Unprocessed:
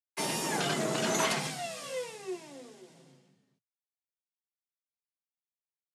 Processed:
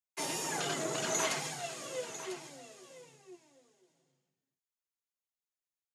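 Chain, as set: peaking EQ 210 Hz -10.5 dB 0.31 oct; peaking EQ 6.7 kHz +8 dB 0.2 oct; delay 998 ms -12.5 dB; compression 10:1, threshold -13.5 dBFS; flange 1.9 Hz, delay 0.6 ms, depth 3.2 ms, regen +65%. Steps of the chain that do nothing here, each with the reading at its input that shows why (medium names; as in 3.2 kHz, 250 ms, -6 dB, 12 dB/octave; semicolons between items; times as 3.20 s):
compression, threshold -13.5 dBFS: peak at its input -15.5 dBFS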